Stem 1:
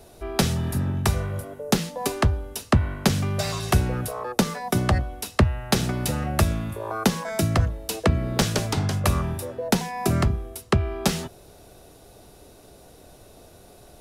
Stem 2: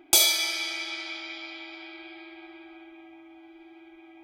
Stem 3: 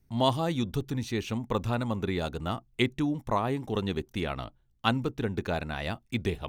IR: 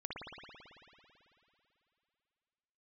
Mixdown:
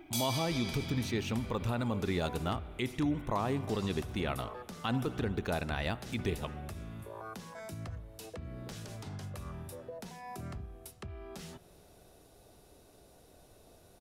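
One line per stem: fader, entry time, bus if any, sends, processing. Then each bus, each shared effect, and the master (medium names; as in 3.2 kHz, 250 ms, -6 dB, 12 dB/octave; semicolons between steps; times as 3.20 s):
-11.0 dB, 0.30 s, send -17 dB, compression 2:1, threshold -33 dBFS, peak gain reduction 11.5 dB; peak limiter -23.5 dBFS, peak gain reduction 11 dB
+1.0 dB, 0.00 s, no send, compression 2:1, threshold -36 dBFS, peak gain reduction 11.5 dB; auto duck -15 dB, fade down 1.40 s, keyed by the third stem
-2.0 dB, 0.00 s, send -18 dB, none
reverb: on, RT60 2.9 s, pre-delay 55 ms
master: peak limiter -22 dBFS, peak gain reduction 10.5 dB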